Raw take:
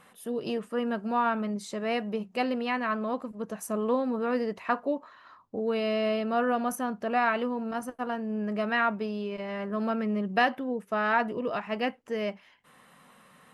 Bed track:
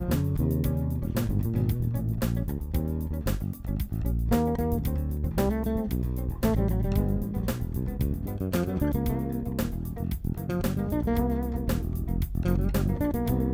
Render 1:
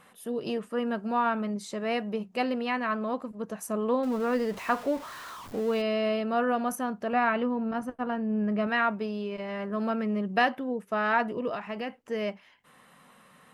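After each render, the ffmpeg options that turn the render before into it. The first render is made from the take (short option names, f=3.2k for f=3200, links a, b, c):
-filter_complex "[0:a]asettb=1/sr,asplit=3[a][b][c];[a]atrim=end=4.034[d];[b]atrim=start=4.03:end=5.82,asetpts=PTS-STARTPTS,afade=t=in:d=0.004:c=qsin,afade=t=out:st=1.786:d=0.004:c=qsin,aeval=exprs='val(0)+0.5*0.0119*sgn(val(0))':c=same[e];[c]atrim=start=5.816[f];[d][e]acrossfade=d=0.004:c1=hsin:c2=qsin[g];[g][f]acrossfade=d=0.004:c1=qsin:c2=hsin,asettb=1/sr,asplit=3[h][i][j];[h]atrim=end=7.134[k];[i]atrim=start=7.13:end=8.67,asetpts=PTS-STARTPTS,afade=t=in:d=0.004:c=qsin,afade=t=out:st=1.536:d=0.004:c=qsin,bass=f=250:g=6,treble=f=4k:g=-9[l];[j]atrim=start=8.666[m];[k][l]acrossfade=d=0.004:c1=hsin:c2=qsin[n];[n][m]acrossfade=d=0.004:c1=qsin:c2=hsin,asettb=1/sr,asplit=3[o][p][q];[o]atrim=end=11.544[r];[p]atrim=start=11.54:end=11.97,asetpts=PTS-STARTPTS,afade=t=in:d=0.004:c=qsin,afade=t=out:st=0.426:d=0.004:c=qsin,acompressor=threshold=-30dB:ratio=6:attack=3.2:release=140:knee=1:detection=peak[s];[q]atrim=start=11.966[t];[r][s]acrossfade=d=0.004:c1=hsin:c2=qsin[u];[u][t]acrossfade=d=0.004:c1=qsin:c2=hsin"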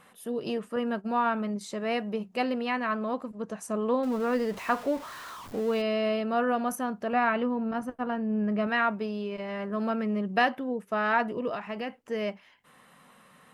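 -filter_complex "[0:a]asettb=1/sr,asplit=3[a][b][c];[a]atrim=end=0.764[d];[b]atrim=start=0.76:end=1.61,asetpts=PTS-STARTPTS,afade=t=in:d=0.004:c=qsin,afade=t=out:st=0.846:d=0.004:c=qsin,agate=range=-33dB:threshold=-34dB:ratio=3:release=100:detection=peak[e];[c]atrim=start=1.606[f];[d][e]acrossfade=d=0.004:c1=hsin:c2=qsin[g];[g][f]acrossfade=d=0.004:c1=qsin:c2=hsin,asettb=1/sr,asplit=3[h][i][j];[h]atrim=end=3.324[k];[i]atrim=start=3.32:end=3.94,asetpts=PTS-STARTPTS,afade=t=in:d=0.004:c=qsin,afade=t=out:st=0.616:d=0.004:c=qsin,lowpass=f=9.8k:w=0.5412,lowpass=f=9.8k:w=1.3066[l];[j]atrim=start=3.936[m];[k][l]acrossfade=d=0.004:c1=hsin:c2=qsin[n];[n][m]acrossfade=d=0.004:c1=qsin:c2=hsin"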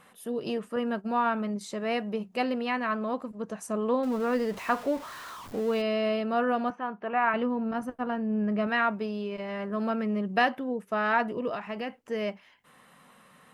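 -filter_complex "[0:a]asettb=1/sr,asplit=3[a][b][c];[a]atrim=end=6.704[d];[b]atrim=start=6.7:end=7.34,asetpts=PTS-STARTPTS,afade=t=in:d=0.004:c=qsin,afade=t=out:st=0.636:d=0.004:c=qsin,highpass=220,equalizer=f=260:t=q:w=4:g=-7,equalizer=f=560:t=q:w=4:g=-7,equalizer=f=980:t=q:w=4:g=3,lowpass=f=2.9k:w=0.5412,lowpass=f=2.9k:w=1.3066[e];[c]atrim=start=7.336[f];[d][e]acrossfade=d=0.004:c1=hsin:c2=qsin[g];[g][f]acrossfade=d=0.004:c1=qsin:c2=hsin"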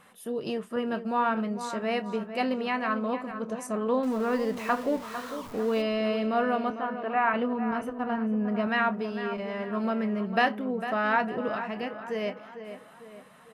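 -filter_complex "[0:a]asplit=2[a][b];[b]adelay=27,volume=-13.5dB[c];[a][c]amix=inputs=2:normalize=0,asplit=2[d][e];[e]adelay=451,lowpass=f=2.8k:p=1,volume=-10dB,asplit=2[f][g];[g]adelay=451,lowpass=f=2.8k:p=1,volume=0.48,asplit=2[h][i];[i]adelay=451,lowpass=f=2.8k:p=1,volume=0.48,asplit=2[j][k];[k]adelay=451,lowpass=f=2.8k:p=1,volume=0.48,asplit=2[l][m];[m]adelay=451,lowpass=f=2.8k:p=1,volume=0.48[n];[d][f][h][j][l][n]amix=inputs=6:normalize=0"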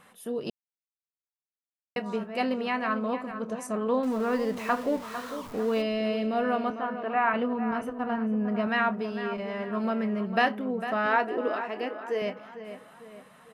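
-filter_complex "[0:a]asettb=1/sr,asplit=3[a][b][c];[a]atrim=end=5.834[d];[b]atrim=start=5.83:end=6.45,asetpts=PTS-STARTPTS,afade=t=in:d=0.004:c=qsin,afade=t=out:st=0.616:d=0.004:c=qsin,equalizer=f=1.2k:w=1.6:g=-7[e];[c]atrim=start=6.446[f];[d][e]acrossfade=d=0.004:c1=hsin:c2=qsin[g];[g][f]acrossfade=d=0.004:c1=qsin:c2=hsin,asettb=1/sr,asplit=3[h][i][j];[h]atrim=end=11.064[k];[i]atrim=start=11.06:end=12.22,asetpts=PTS-STARTPTS,afade=t=in:d=0.004:c=qsin,afade=t=out:st=1.156:d=0.004:c=qsin,lowshelf=f=230:t=q:w=3:g=-10.5[l];[j]atrim=start=12.216[m];[k][l]acrossfade=d=0.004:c1=hsin:c2=qsin[n];[n][m]acrossfade=d=0.004:c1=qsin:c2=hsin,asplit=3[o][p][q];[o]atrim=end=0.5,asetpts=PTS-STARTPTS,afade=t=out:st=0.496:d=0.004:c=hsin[r];[p]atrim=start=0.5:end=1.96,asetpts=PTS-STARTPTS,volume=0[s];[q]atrim=start=1.96,asetpts=PTS-STARTPTS,afade=t=in:d=0.004:c=hsin[t];[r][s][t]concat=n=3:v=0:a=1"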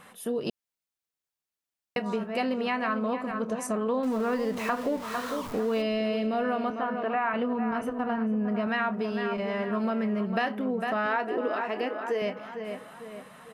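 -filter_complex "[0:a]asplit=2[a][b];[b]alimiter=limit=-21.5dB:level=0:latency=1,volume=-2dB[c];[a][c]amix=inputs=2:normalize=0,acompressor=threshold=-27dB:ratio=2.5"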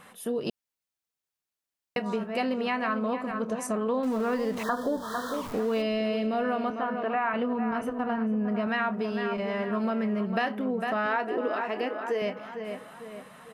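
-filter_complex "[0:a]asettb=1/sr,asplit=3[a][b][c];[a]atrim=end=4.634[d];[b]atrim=start=4.63:end=5.34,asetpts=PTS-STARTPTS,afade=t=in:d=0.004:c=qsin,afade=t=out:st=0.706:d=0.004:c=qsin,asuperstop=centerf=2400:order=20:qfactor=1.9[e];[c]atrim=start=5.336[f];[d][e]acrossfade=d=0.004:c1=hsin:c2=qsin[g];[g][f]acrossfade=d=0.004:c1=qsin:c2=hsin"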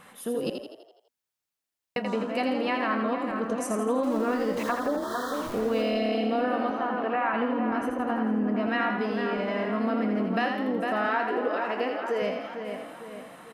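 -filter_complex "[0:a]asplit=8[a][b][c][d][e][f][g][h];[b]adelay=83,afreqshift=34,volume=-5.5dB[i];[c]adelay=166,afreqshift=68,volume=-10.9dB[j];[d]adelay=249,afreqshift=102,volume=-16.2dB[k];[e]adelay=332,afreqshift=136,volume=-21.6dB[l];[f]adelay=415,afreqshift=170,volume=-26.9dB[m];[g]adelay=498,afreqshift=204,volume=-32.3dB[n];[h]adelay=581,afreqshift=238,volume=-37.6dB[o];[a][i][j][k][l][m][n][o]amix=inputs=8:normalize=0"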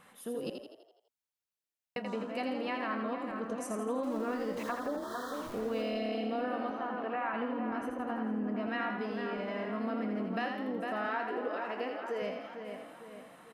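-af "volume=-8dB"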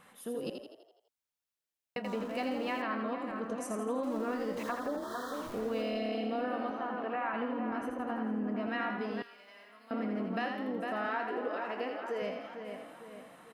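-filter_complex "[0:a]asettb=1/sr,asplit=3[a][b][c];[a]atrim=end=2.044[d];[b]atrim=start=2.04:end=2.82,asetpts=PTS-STARTPTS,afade=t=in:d=0.004:c=qsin,afade=t=out:st=0.776:d=0.004:c=qsin,aeval=exprs='val(0)+0.5*0.00376*sgn(val(0))':c=same[e];[c]atrim=start=2.816[f];[d][e]acrossfade=d=0.004:c1=hsin:c2=qsin[g];[g][f]acrossfade=d=0.004:c1=qsin:c2=hsin,asettb=1/sr,asplit=3[h][i][j];[h]atrim=end=9.224[k];[i]atrim=start=9.22:end=9.91,asetpts=PTS-STARTPTS,afade=t=in:d=0.004:c=qsin,afade=t=out:st=0.686:d=0.004:c=qsin,aderivative[l];[j]atrim=start=9.906[m];[k][l]acrossfade=d=0.004:c1=hsin:c2=qsin[n];[n][m]acrossfade=d=0.004:c1=qsin:c2=hsin"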